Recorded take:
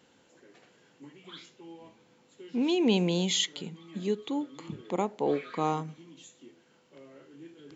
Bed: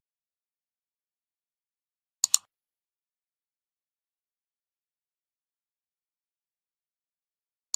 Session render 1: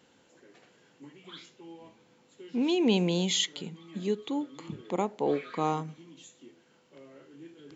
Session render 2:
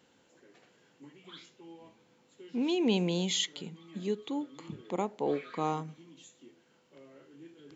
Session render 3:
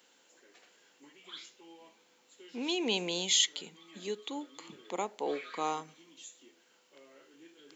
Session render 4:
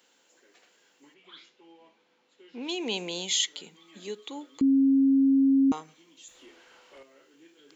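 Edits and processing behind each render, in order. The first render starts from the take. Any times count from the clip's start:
nothing audible
gain -3 dB
HPF 250 Hz 12 dB/oct; tilt +2.5 dB/oct
1.14–2.69 air absorption 160 m; 4.61–5.72 bleep 271 Hz -17.5 dBFS; 6.28–7.03 overdrive pedal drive 24 dB, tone 1700 Hz, clips at -40 dBFS

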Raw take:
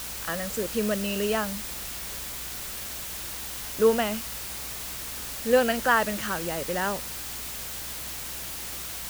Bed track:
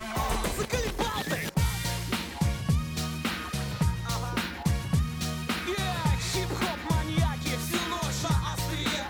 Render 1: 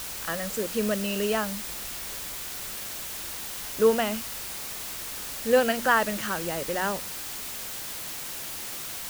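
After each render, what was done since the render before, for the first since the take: de-hum 60 Hz, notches 5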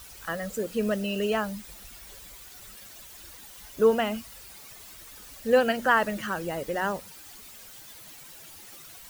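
denoiser 13 dB, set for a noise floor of -36 dBFS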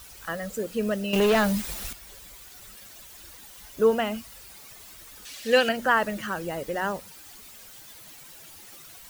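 1.13–1.93 sample leveller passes 3; 5.25–5.69 weighting filter D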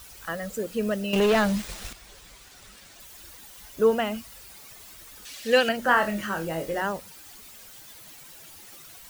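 1.14–3 median filter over 3 samples; 5.83–6.82 flutter echo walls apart 4.2 m, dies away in 0.23 s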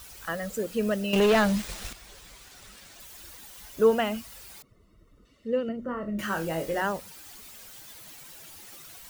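4.62–6.19 running mean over 54 samples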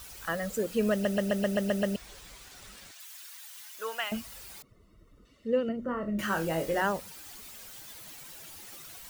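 0.92 stutter in place 0.13 s, 8 plays; 2.91–4.12 HPF 1300 Hz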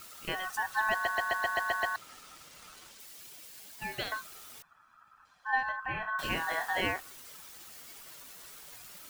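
ring modulator 1300 Hz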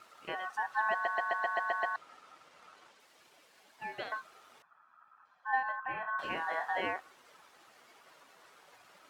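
band-pass 810 Hz, Q 0.7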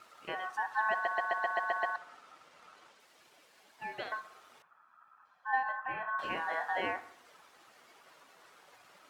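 analogue delay 62 ms, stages 1024, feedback 55%, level -16 dB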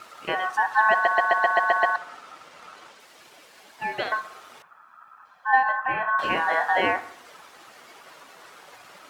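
gain +12 dB

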